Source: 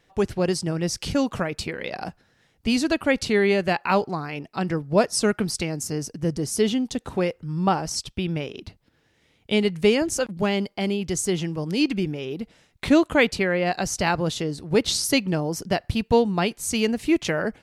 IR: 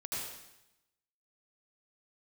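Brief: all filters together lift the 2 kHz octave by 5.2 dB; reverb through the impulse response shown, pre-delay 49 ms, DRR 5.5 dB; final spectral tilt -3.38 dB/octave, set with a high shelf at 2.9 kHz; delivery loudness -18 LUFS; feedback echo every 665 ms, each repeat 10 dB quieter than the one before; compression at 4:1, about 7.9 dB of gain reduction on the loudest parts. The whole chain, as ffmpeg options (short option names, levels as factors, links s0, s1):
-filter_complex "[0:a]equalizer=f=2000:t=o:g=3.5,highshelf=f=2900:g=7,acompressor=threshold=0.0891:ratio=4,aecho=1:1:665|1330|1995|2660:0.316|0.101|0.0324|0.0104,asplit=2[s0][s1];[1:a]atrim=start_sample=2205,adelay=49[s2];[s1][s2]afir=irnorm=-1:irlink=0,volume=0.398[s3];[s0][s3]amix=inputs=2:normalize=0,volume=2.11"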